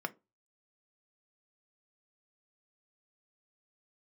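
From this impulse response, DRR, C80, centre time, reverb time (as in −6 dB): 7.0 dB, 31.0 dB, 3 ms, 0.25 s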